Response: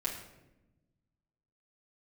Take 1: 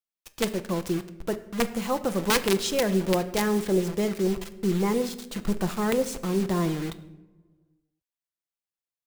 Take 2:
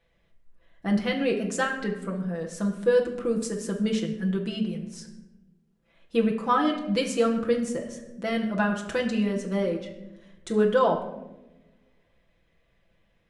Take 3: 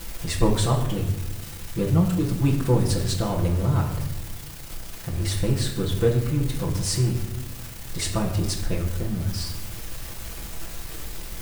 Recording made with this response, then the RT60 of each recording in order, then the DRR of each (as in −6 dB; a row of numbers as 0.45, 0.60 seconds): 3; non-exponential decay, 0.95 s, 0.95 s; 8.0, −0.5, −5.5 decibels